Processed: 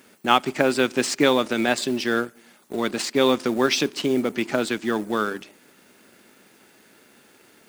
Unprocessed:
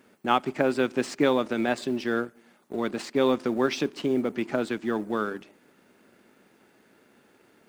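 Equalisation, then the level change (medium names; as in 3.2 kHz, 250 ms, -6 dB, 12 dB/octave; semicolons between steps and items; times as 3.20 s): treble shelf 2.5 kHz +11 dB; +3.0 dB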